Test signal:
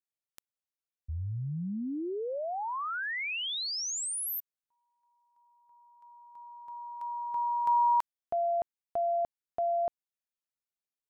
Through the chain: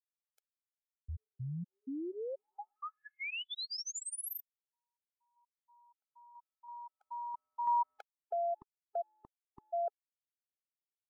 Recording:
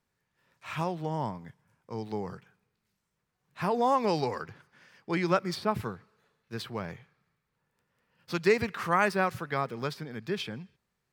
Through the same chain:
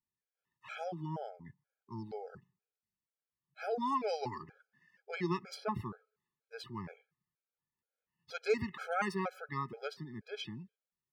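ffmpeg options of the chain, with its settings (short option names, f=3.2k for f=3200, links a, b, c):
-af "afftdn=nr=13:nf=-54,afftfilt=real='re*gt(sin(2*PI*2.1*pts/sr)*(1-2*mod(floor(b*sr/1024/430),2)),0)':imag='im*gt(sin(2*PI*2.1*pts/sr)*(1-2*mod(floor(b*sr/1024/430),2)),0)':win_size=1024:overlap=0.75,volume=-4.5dB"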